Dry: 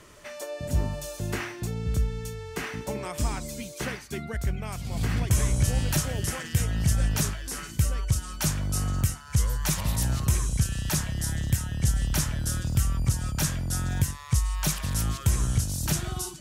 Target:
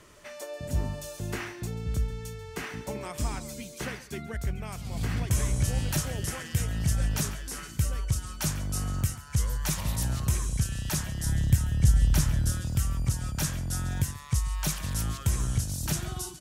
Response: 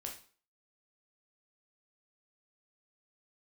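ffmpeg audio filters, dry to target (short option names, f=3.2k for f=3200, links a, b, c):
-filter_complex "[0:a]asettb=1/sr,asplit=3[a][b][c];[a]atrim=end=11.254[d];[b]atrim=start=11.25:end=12.52,asetpts=PTS-STARTPTS,afade=t=in:d=0.004:c=qsin,afade=t=out:st=1.266:d=0.004:c=qsin,lowshelf=f=200:g=8[e];[c]atrim=start=12.516[f];[d][e]acrossfade=d=0.004:c1=hsin:c2=qsin[g];[g][f]acrossfade=d=0.004:c1=qsin:c2=hsin,aecho=1:1:139:0.133,volume=-3dB"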